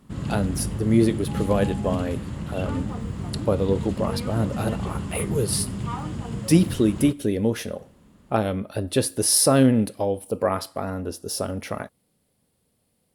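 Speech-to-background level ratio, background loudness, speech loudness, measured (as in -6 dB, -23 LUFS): 6.5 dB, -30.5 LUFS, -24.0 LUFS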